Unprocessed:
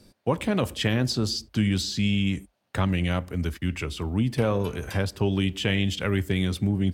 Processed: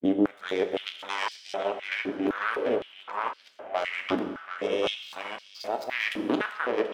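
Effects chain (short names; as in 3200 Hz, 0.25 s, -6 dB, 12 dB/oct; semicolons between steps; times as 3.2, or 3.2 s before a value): whole clip reversed; power-law curve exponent 3; high shelf 3600 Hz -11.5 dB; notch 4500 Hz, Q 20; darkening echo 0.734 s, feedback 63%, low-pass 2500 Hz, level -8 dB; in parallel at -8.5 dB: hard clip -29.5 dBFS, distortion -7 dB; on the sum: limiter -23 dBFS, peak gain reduction 11 dB; on a send at -5 dB: reverb RT60 1.7 s, pre-delay 6 ms; on the sum: stepped high-pass 3.9 Hz 300–4600 Hz; gain +8 dB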